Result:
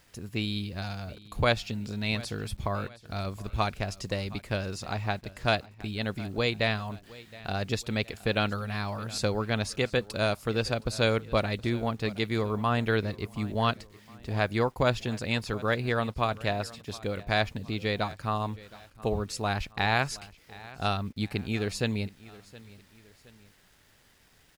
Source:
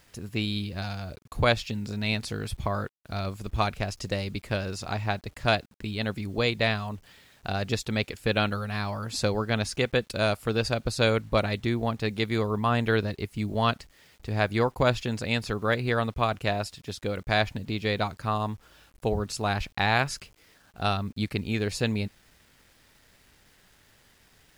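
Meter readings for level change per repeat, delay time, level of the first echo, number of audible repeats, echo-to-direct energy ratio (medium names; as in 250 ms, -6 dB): -7.5 dB, 719 ms, -20.0 dB, 2, -19.5 dB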